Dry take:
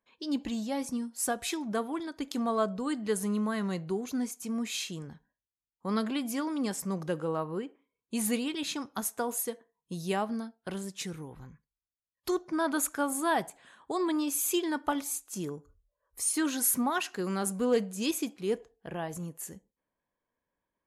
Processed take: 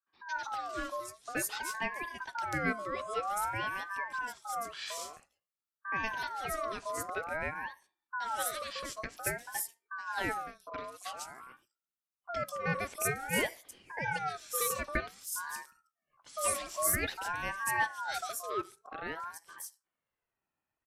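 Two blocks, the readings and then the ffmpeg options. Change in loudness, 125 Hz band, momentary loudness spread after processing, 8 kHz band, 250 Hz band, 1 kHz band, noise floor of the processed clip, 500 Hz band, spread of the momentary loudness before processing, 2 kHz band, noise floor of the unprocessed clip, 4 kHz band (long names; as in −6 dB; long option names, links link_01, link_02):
−3.5 dB, −5.0 dB, 12 LU, −4.0 dB, −15.0 dB, +0.5 dB, below −85 dBFS, −6.5 dB, 11 LU, +5.0 dB, below −85 dBFS, −4.0 dB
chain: -filter_complex "[0:a]acrossover=split=320|4700[link_01][link_02][link_03];[link_02]adelay=70[link_04];[link_03]adelay=210[link_05];[link_01][link_04][link_05]amix=inputs=3:normalize=0,aeval=exprs='val(0)*sin(2*PI*1100*n/s+1100*0.25/0.51*sin(2*PI*0.51*n/s))':channel_layout=same"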